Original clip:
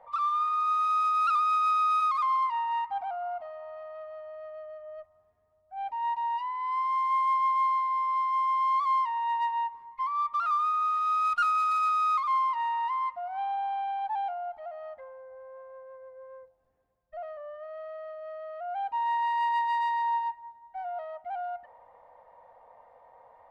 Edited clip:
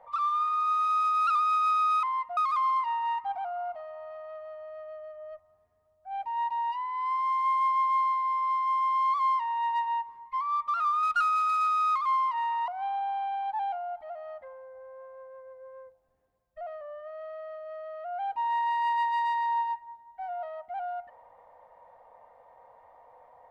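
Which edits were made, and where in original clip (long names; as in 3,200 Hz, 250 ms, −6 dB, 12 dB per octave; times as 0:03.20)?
0:10.69–0:11.25: remove
0:12.90–0:13.24: move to 0:02.03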